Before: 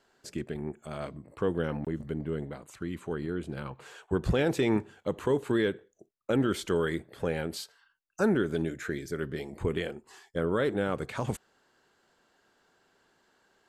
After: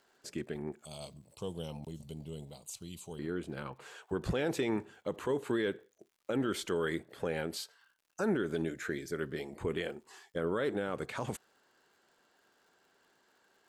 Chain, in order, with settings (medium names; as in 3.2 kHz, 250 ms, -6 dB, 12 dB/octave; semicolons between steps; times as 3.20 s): 0.85–3.19 s: FFT filter 110 Hz 0 dB, 200 Hz -4 dB, 280 Hz -13 dB, 610 Hz -7 dB, 900 Hz -6 dB, 1.7 kHz -27 dB, 2.6 kHz -1 dB, 4.6 kHz +10 dB; crackle 140 per s -58 dBFS; bass shelf 130 Hz -10 dB; peak limiter -21 dBFS, peak gain reduction 6 dB; trim -1.5 dB